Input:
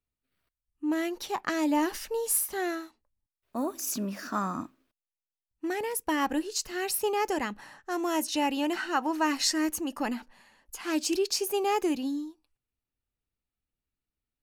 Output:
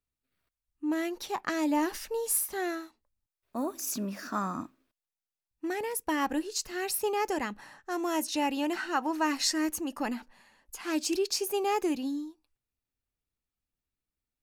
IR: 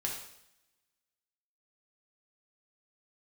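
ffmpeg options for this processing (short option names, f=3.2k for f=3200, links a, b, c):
-af "bandreject=f=3k:w=29,volume=-1.5dB"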